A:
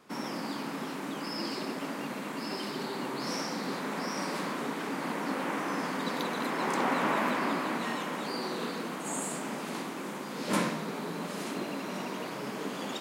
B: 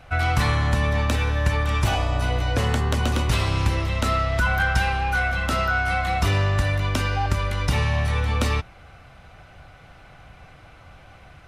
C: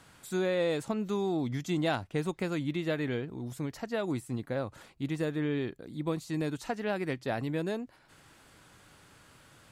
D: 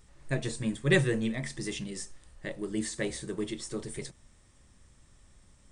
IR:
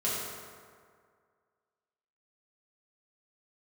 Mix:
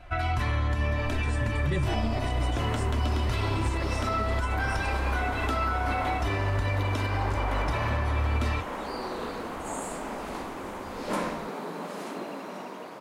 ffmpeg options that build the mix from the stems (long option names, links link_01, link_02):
-filter_complex "[0:a]equalizer=frequency=720:width=0.59:gain=8.5,dynaudnorm=framelen=320:gausssize=9:maxgain=10dB,adelay=600,volume=-13dB[link_01];[1:a]bass=frequency=250:gain=2,treble=frequency=4000:gain=-7,aecho=1:1:3:0.62,flanger=delay=5.6:depth=4.4:regen=-52:speed=0.79:shape=sinusoidal,volume=0.5dB[link_02];[2:a]volume=-18dB[link_03];[3:a]lowshelf=frequency=160:gain=12,asplit=2[link_04][link_05];[link_05]adelay=3,afreqshift=0.97[link_06];[link_04][link_06]amix=inputs=2:normalize=1,adelay=800,volume=-1dB[link_07];[link_01][link_02][link_03][link_07]amix=inputs=4:normalize=0,alimiter=limit=-18.5dB:level=0:latency=1:release=144"